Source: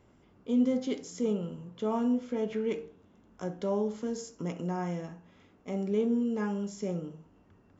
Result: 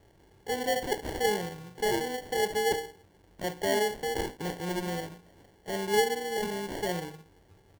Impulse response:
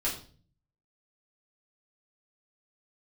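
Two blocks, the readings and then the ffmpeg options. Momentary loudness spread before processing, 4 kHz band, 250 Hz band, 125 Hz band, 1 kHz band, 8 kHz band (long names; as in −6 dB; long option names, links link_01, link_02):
12 LU, +15.0 dB, −7.5 dB, −2.0 dB, +9.5 dB, can't be measured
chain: -af "crystalizer=i=3:c=0,aecho=1:1:2.1:0.87,acrusher=samples=35:mix=1:aa=0.000001"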